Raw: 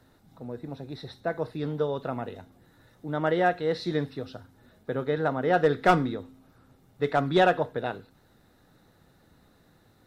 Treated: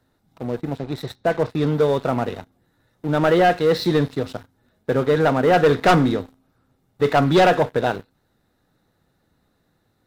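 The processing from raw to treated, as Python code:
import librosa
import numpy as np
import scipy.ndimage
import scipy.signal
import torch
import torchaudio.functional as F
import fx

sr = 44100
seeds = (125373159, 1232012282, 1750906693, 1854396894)

y = fx.lowpass(x, sr, hz=5400.0, slope=12, at=(0.77, 1.5))
y = fx.leveller(y, sr, passes=3)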